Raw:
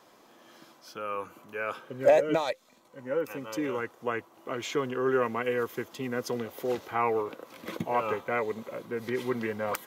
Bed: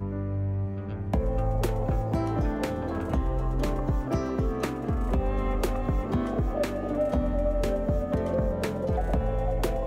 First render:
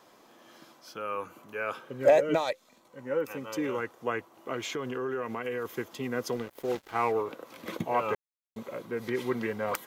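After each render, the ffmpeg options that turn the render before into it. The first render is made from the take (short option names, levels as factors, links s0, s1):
-filter_complex "[0:a]asettb=1/sr,asplit=3[s0][s1][s2];[s0]atrim=end=4.694[s3];[s1]atrim=start=4.69:end=5.65,asetpts=PTS-STARTPTS,afade=t=in:d=0.004:c=qsin,afade=t=out:st=0.956:d=0.004:c=qsin,acompressor=threshold=0.0316:ratio=4:attack=3.2:release=140:knee=1:detection=peak[s4];[s2]atrim=start=5.646[s5];[s3][s4]acrossfade=d=0.004:c1=hsin:c2=qsin[s6];[s6][s5]acrossfade=d=0.004:c1=qsin:c2=hsin,asettb=1/sr,asplit=3[s7][s8][s9];[s7]atrim=end=6.364[s10];[s8]atrim=start=6.36:end=7.12,asetpts=PTS-STARTPTS,afade=t=in:d=0.004:c=qsin,afade=t=out:st=0.756:d=0.004:c=qsin,aeval=exprs='sgn(val(0))*max(abs(val(0))-0.00531,0)':c=same[s11];[s9]atrim=start=7.116[s12];[s10][s11]acrossfade=d=0.004:c1=hsin:c2=qsin[s13];[s13][s12]acrossfade=d=0.004:c1=qsin:c2=hsin,asplit=3[s14][s15][s16];[s14]atrim=end=8.15,asetpts=PTS-STARTPTS,afade=t=out:st=8.146:d=0.004:c=hsin[s17];[s15]atrim=start=8.15:end=8.56,asetpts=PTS-STARTPTS,volume=0[s18];[s16]atrim=start=8.56,asetpts=PTS-STARTPTS,afade=t=in:d=0.004:c=hsin[s19];[s17][s18][s19]concat=n=3:v=0:a=1"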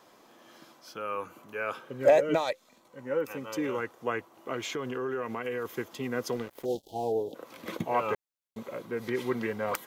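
-filter_complex "[0:a]asplit=3[s0][s1][s2];[s0]afade=t=out:st=6.64:d=0.02[s3];[s1]asuperstop=centerf=1600:order=12:qfactor=0.67,afade=t=in:st=6.64:d=0.02,afade=t=out:st=7.34:d=0.02[s4];[s2]afade=t=in:st=7.34:d=0.02[s5];[s3][s4][s5]amix=inputs=3:normalize=0"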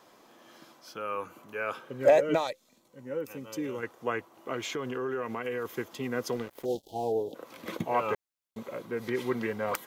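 -filter_complex "[0:a]asettb=1/sr,asplit=3[s0][s1][s2];[s0]atrim=end=2.474[s3];[s1]atrim=start=2.47:end=3.83,asetpts=PTS-STARTPTS,afade=t=in:d=0.004:c=qsin,afade=t=out:st=1.356:d=0.004:c=qsin,equalizer=f=1200:w=0.48:g=-9[s4];[s2]atrim=start=3.826[s5];[s3][s4]acrossfade=d=0.004:c1=hsin:c2=qsin[s6];[s6][s5]acrossfade=d=0.004:c1=qsin:c2=hsin"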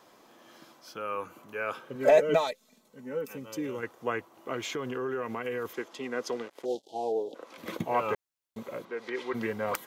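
-filter_complex "[0:a]asettb=1/sr,asplit=3[s0][s1][s2];[s0]atrim=end=1.954[s3];[s1]atrim=start=1.95:end=3.36,asetpts=PTS-STARTPTS,afade=t=in:d=0.004:c=qsin,afade=t=out:st=1.406:d=0.004:c=qsin,aecho=1:1:4.6:0.65,atrim=end_sample=62181[s4];[s2]atrim=start=3.356[s5];[s3][s4]acrossfade=d=0.004:c1=hsin:c2=qsin[s6];[s6][s5]acrossfade=d=0.004:c1=qsin:c2=hsin,asettb=1/sr,asplit=3[s7][s8][s9];[s7]atrim=end=5.734[s10];[s8]atrim=start=5.73:end=7.58,asetpts=PTS-STARTPTS,afade=t=in:d=0.004:c=qsin,afade=t=out:st=1.846:d=0.004:c=qsin,highpass=280,lowpass=8000[s11];[s9]atrim=start=7.576[s12];[s10][s11]acrossfade=d=0.004:c1=hsin:c2=qsin[s13];[s13][s12]acrossfade=d=0.004:c1=qsin:c2=hsin,asplit=3[s14][s15][s16];[s14]afade=t=out:st=8.84:d=0.02[s17];[s15]highpass=420,lowpass=5400,afade=t=in:st=8.84:d=0.02,afade=t=out:st=9.33:d=0.02[s18];[s16]afade=t=in:st=9.33:d=0.02[s19];[s17][s18][s19]amix=inputs=3:normalize=0"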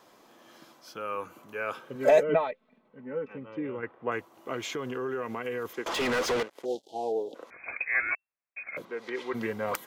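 -filter_complex "[0:a]asettb=1/sr,asplit=3[s0][s1][s2];[s0]atrim=end=2.234[s3];[s1]atrim=start=2.23:end=4.12,asetpts=PTS-STARTPTS,afade=t=in:d=0.004:c=qsin,afade=t=out:st=1.886:d=0.004:c=qsin,lowpass=f=2500:w=0.5412,lowpass=f=2500:w=1.3066[s4];[s2]atrim=start=4.116[s5];[s3][s4]acrossfade=d=0.004:c1=hsin:c2=qsin[s6];[s6][s5]acrossfade=d=0.004:c1=qsin:c2=hsin,asettb=1/sr,asplit=3[s7][s8][s9];[s7]atrim=end=5.864[s10];[s8]atrim=start=5.86:end=6.43,asetpts=PTS-STARTPTS,afade=t=in:d=0.004:c=qsin,afade=t=out:st=0.566:d=0.004:c=qsin,asplit=2[s11][s12];[s12]highpass=f=720:p=1,volume=56.2,asoftclip=type=tanh:threshold=0.0944[s13];[s11][s13]amix=inputs=2:normalize=0,lowpass=f=3300:p=1,volume=0.501[s14];[s9]atrim=start=6.426[s15];[s10][s14]acrossfade=d=0.004:c1=hsin:c2=qsin[s16];[s16][s15]acrossfade=d=0.004:c1=qsin:c2=hsin,asettb=1/sr,asplit=3[s17][s18][s19];[s17]atrim=end=7.504[s20];[s18]atrim=start=7.5:end=8.77,asetpts=PTS-STARTPTS,afade=t=in:d=0.004:c=qsin,afade=t=out:st=1.266:d=0.004:c=qsin,lowpass=f=2300:t=q:w=0.5098,lowpass=f=2300:t=q:w=0.6013,lowpass=f=2300:t=q:w=0.9,lowpass=f=2300:t=q:w=2.563,afreqshift=-2700[s21];[s19]atrim=start=8.766[s22];[s20][s21]acrossfade=d=0.004:c1=hsin:c2=qsin[s23];[s23][s22]acrossfade=d=0.004:c1=qsin:c2=hsin"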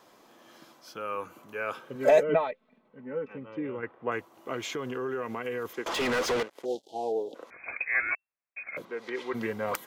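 -af anull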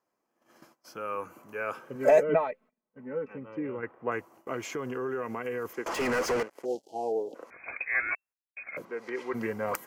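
-af "agate=range=0.0708:threshold=0.00224:ratio=16:detection=peak,equalizer=f=3600:t=o:w=0.46:g=-13.5"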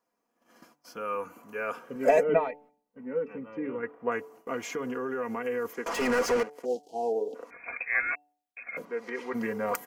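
-af "aecho=1:1:4.2:0.52,bandreject=f=146.7:t=h:w=4,bandreject=f=293.4:t=h:w=4,bandreject=f=440.1:t=h:w=4,bandreject=f=586.8:t=h:w=4,bandreject=f=733.5:t=h:w=4,bandreject=f=880.2:t=h:w=4"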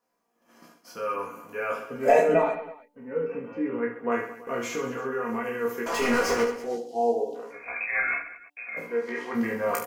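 -filter_complex "[0:a]asplit=2[s0][s1];[s1]adelay=17,volume=0.668[s2];[s0][s2]amix=inputs=2:normalize=0,aecho=1:1:30|72|130.8|213.1|328.4:0.631|0.398|0.251|0.158|0.1"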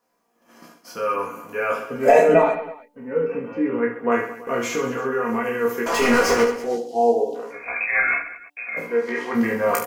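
-af "volume=2.11,alimiter=limit=0.708:level=0:latency=1"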